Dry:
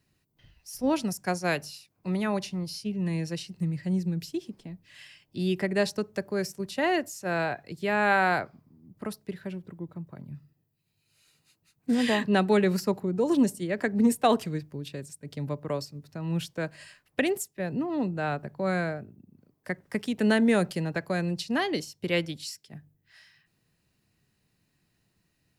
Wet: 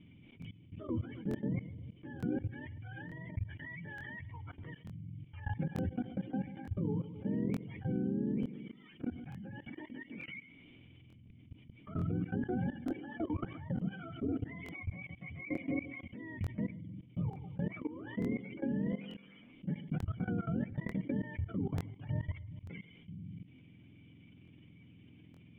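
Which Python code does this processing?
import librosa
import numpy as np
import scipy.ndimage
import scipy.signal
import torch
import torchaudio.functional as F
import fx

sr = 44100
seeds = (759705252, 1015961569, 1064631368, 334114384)

p1 = fx.octave_mirror(x, sr, pivot_hz=560.0)
p2 = fx.quant_dither(p1, sr, seeds[0], bits=12, dither='triangular')
p3 = fx.formant_cascade(p2, sr, vowel='i')
p4 = fx.hum_notches(p3, sr, base_hz=60, count=2)
p5 = p4 + fx.echo_filtered(p4, sr, ms=133, feedback_pct=30, hz=2100.0, wet_db=-21.0, dry=0)
p6 = fx.env_lowpass(p5, sr, base_hz=2500.0, full_db=-33.0)
p7 = fx.level_steps(p6, sr, step_db=24)
p8 = fx.buffer_crackle(p7, sr, first_s=0.4, period_s=0.89, block=1024, kind='repeat')
p9 = fx.env_flatten(p8, sr, amount_pct=50)
y = p9 * 10.0 ** (13.5 / 20.0)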